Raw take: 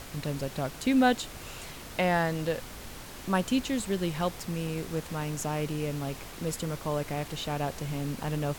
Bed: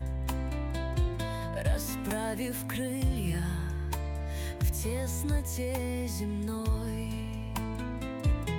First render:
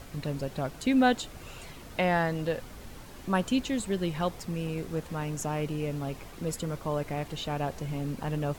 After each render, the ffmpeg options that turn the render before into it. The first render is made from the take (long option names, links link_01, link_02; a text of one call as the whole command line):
ffmpeg -i in.wav -af "afftdn=noise_reduction=7:noise_floor=-44" out.wav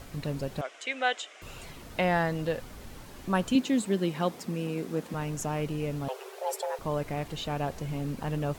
ffmpeg -i in.wav -filter_complex "[0:a]asettb=1/sr,asplit=3[link_01][link_02][link_03];[link_01]atrim=end=0.614[link_04];[link_02]atrim=start=0.61:end=1.42,asetpts=PTS-STARTPTS,afade=type=in:duration=0.004:curve=qsin,afade=type=out:start_time=0.806:duration=0.004:curve=qsin,highpass=frequency=490:width=0.5412,highpass=frequency=490:width=1.3066,equalizer=frequency=500:width_type=q:width=4:gain=-3,equalizer=frequency=890:width_type=q:width=4:gain=-8,equalizer=frequency=2100:width_type=q:width=4:gain=6,equalizer=frequency=3100:width_type=q:width=4:gain=5,equalizer=frequency=4400:width_type=q:width=4:gain=-8,lowpass=frequency=7600:width=0.5412,lowpass=frequency=7600:width=1.3066[link_05];[link_03]atrim=start=1.416[link_06];[link_04][link_05]acrossfade=duration=0.004:curve1=hsin:curve2=qsin[link_07];[link_07][link_06]acrossfade=duration=0.004:curve1=qsin:curve2=hsin,asettb=1/sr,asplit=3[link_08][link_09][link_10];[link_08]atrim=end=3.554[link_11];[link_09]atrim=start=3.55:end=5.14,asetpts=PTS-STARTPTS,afade=type=in:duration=0.004:curve=qsin,afade=type=out:start_time=1.586:duration=0.004:curve=qsin,highpass=frequency=220:width_type=q:width=1.7[link_12];[link_10]atrim=start=5.136[link_13];[link_11][link_12]acrossfade=duration=0.004:curve1=hsin:curve2=qsin[link_14];[link_14][link_13]acrossfade=duration=0.004:curve1=qsin:curve2=hsin,asettb=1/sr,asplit=3[link_15][link_16][link_17];[link_15]atrim=end=6.084[link_18];[link_16]atrim=start=6.08:end=6.79,asetpts=PTS-STARTPTS,afade=type=in:duration=0.004:curve=qsin,afade=type=out:start_time=0.706:duration=0.004:curve=qsin,afreqshift=370[link_19];[link_17]atrim=start=6.786[link_20];[link_18][link_19]acrossfade=duration=0.004:curve1=hsin:curve2=qsin[link_21];[link_21][link_20]acrossfade=duration=0.004:curve1=qsin:curve2=hsin" out.wav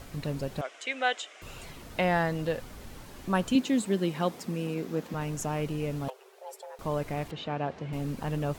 ffmpeg -i in.wav -filter_complex "[0:a]asettb=1/sr,asplit=3[link_01][link_02][link_03];[link_01]atrim=end=4.744[link_04];[link_02]atrim=start=4.74:end=5.21,asetpts=PTS-STARTPTS,afade=type=in:duration=0.004:curve=qsin,afade=type=out:start_time=0.466:duration=0.004:curve=qsin,equalizer=frequency=9200:width_type=o:width=0.43:gain=-6.5[link_05];[link_03]atrim=start=5.206[link_06];[link_04][link_05]acrossfade=duration=0.004:curve1=hsin:curve2=qsin[link_07];[link_07][link_06]acrossfade=duration=0.004:curve1=qsin:curve2=hsin,asettb=1/sr,asplit=3[link_08][link_09][link_10];[link_08]atrim=end=7.314[link_11];[link_09]atrim=start=7.31:end=7.93,asetpts=PTS-STARTPTS,afade=type=in:duration=0.004:curve=qsin,afade=type=out:start_time=0.616:duration=0.004:curve=qsin,highpass=130,lowpass=3200[link_12];[link_10]atrim=start=7.926[link_13];[link_11][link_12]acrossfade=duration=0.004:curve1=hsin:curve2=qsin[link_14];[link_14][link_13]acrossfade=duration=0.004:curve1=qsin:curve2=hsin,asplit=3[link_15][link_16][link_17];[link_15]atrim=end=6.102[link_18];[link_16]atrim=start=6.098:end=6.792,asetpts=PTS-STARTPTS,volume=-11.5dB[link_19];[link_17]atrim=start=6.788[link_20];[link_18][link_19]acrossfade=duration=0.004:curve1=hsin:curve2=hsin[link_21];[link_21][link_20]acrossfade=duration=0.004:curve1=hsin:curve2=hsin" out.wav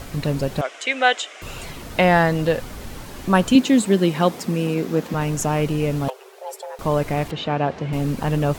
ffmpeg -i in.wav -af "volume=10.5dB" out.wav